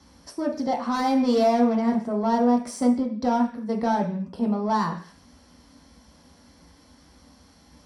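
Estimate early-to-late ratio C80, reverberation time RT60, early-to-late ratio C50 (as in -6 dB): 15.0 dB, 0.45 s, 10.0 dB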